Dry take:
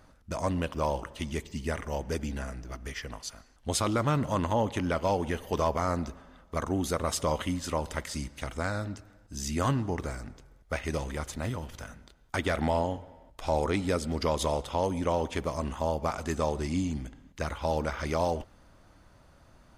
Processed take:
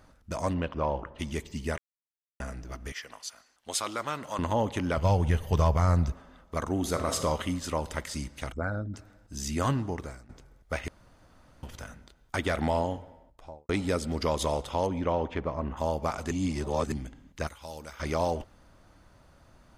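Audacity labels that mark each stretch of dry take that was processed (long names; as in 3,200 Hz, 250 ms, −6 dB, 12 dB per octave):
0.530000	1.180000	low-pass filter 3,700 Hz → 1,600 Hz
1.780000	2.400000	silence
2.920000	4.390000	high-pass filter 990 Hz 6 dB per octave
4.970000	6.120000	low shelf with overshoot 180 Hz +10.5 dB, Q 1.5
6.740000	7.210000	thrown reverb, RT60 1.3 s, DRR 6 dB
8.520000	8.940000	spectral envelope exaggerated exponent 2
9.640000	10.290000	fade out equal-power, to −18 dB
10.880000	11.630000	fill with room tone
13.010000	13.690000	fade out and dull
14.860000	15.760000	low-pass filter 4,100 Hz → 1,600 Hz
16.310000	16.920000	reverse
17.470000	18.000000	first-order pre-emphasis coefficient 0.8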